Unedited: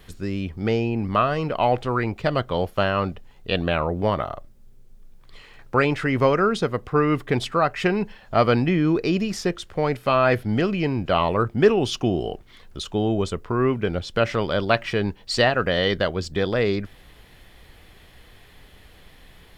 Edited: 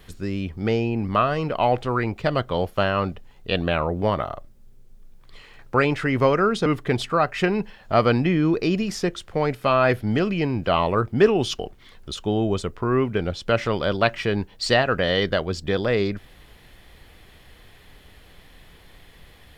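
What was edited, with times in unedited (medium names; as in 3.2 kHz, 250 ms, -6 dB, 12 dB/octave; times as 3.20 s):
6.66–7.08 s: delete
12.01–12.27 s: delete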